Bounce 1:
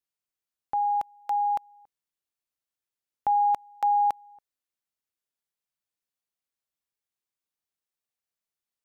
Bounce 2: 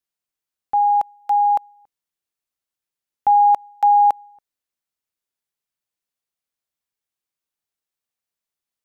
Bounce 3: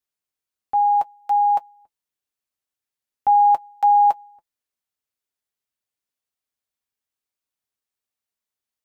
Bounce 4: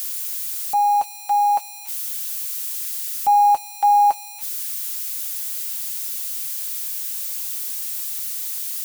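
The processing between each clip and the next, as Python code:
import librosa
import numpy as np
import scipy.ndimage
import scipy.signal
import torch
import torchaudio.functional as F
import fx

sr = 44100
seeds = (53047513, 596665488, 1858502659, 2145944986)

y1 = fx.dynamic_eq(x, sr, hz=720.0, q=0.87, threshold_db=-37.0, ratio=4.0, max_db=7)
y1 = y1 * 10.0 ** (2.5 / 20.0)
y2 = fx.notch_comb(y1, sr, f0_hz=170.0)
y3 = y2 + 0.5 * 10.0 ** (-23.0 / 20.0) * np.diff(np.sign(y2), prepend=np.sign(y2[:1]))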